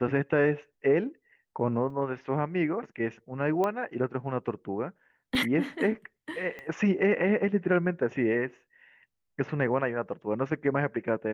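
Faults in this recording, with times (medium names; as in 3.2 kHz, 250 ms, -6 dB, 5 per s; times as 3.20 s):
1.90 s: dropout 3.3 ms
3.64 s: pop -17 dBFS
5.35 s: dropout 2.3 ms
6.59 s: pop -27 dBFS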